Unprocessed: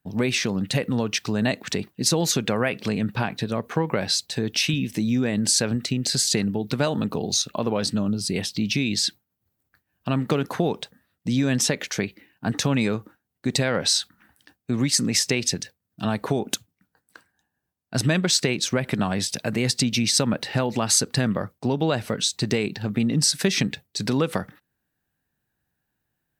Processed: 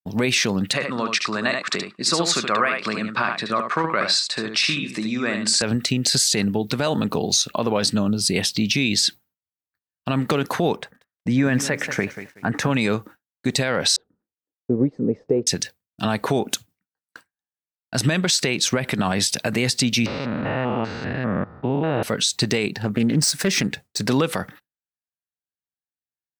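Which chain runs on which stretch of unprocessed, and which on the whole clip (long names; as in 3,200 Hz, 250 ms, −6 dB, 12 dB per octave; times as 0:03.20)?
0:00.73–0:05.62: loudspeaker in its box 260–7,700 Hz, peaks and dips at 270 Hz −5 dB, 460 Hz −7 dB, 810 Hz −7 dB, 1,200 Hz +10 dB, 3,100 Hz −7 dB, 6,100 Hz −9 dB + single-tap delay 74 ms −6.5 dB
0:10.76–0:12.71: high shelf with overshoot 2,600 Hz −10.5 dB, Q 1.5 + feedback echo at a low word length 186 ms, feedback 35%, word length 8 bits, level −14 dB
0:13.96–0:15.47: one scale factor per block 5 bits + low-pass with resonance 460 Hz, resonance Q 3.8 + expander for the loud parts, over −35 dBFS
0:20.06–0:22.03: spectrum averaged block by block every 200 ms + low-pass filter 2,500 Hz 24 dB per octave
0:22.71–0:24.10: running median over 3 samples + parametric band 3,500 Hz −6.5 dB 1.2 octaves + highs frequency-modulated by the lows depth 0.26 ms
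whole clip: low-shelf EQ 490 Hz −5.5 dB; downward expander −46 dBFS; brickwall limiter −16.5 dBFS; level +7.5 dB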